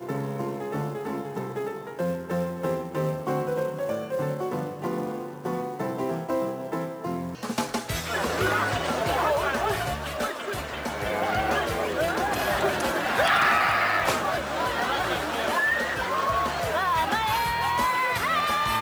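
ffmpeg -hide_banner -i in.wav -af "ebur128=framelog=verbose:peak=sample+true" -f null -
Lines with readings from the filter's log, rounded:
Integrated loudness:
  I:         -26.3 LUFS
  Threshold: -36.3 LUFS
Loudness range:
  LRA:         6.8 LU
  Threshold: -46.3 LUFS
  LRA low:   -30.3 LUFS
  LRA high:  -23.4 LUFS
Sample peak:
  Peak:       -9.0 dBFS
True peak:
  Peak:       -8.6 dBFS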